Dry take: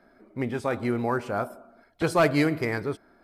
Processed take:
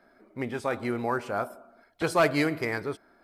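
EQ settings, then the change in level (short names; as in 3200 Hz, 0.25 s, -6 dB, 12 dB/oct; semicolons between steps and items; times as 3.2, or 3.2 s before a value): low shelf 330 Hz -6.5 dB; 0.0 dB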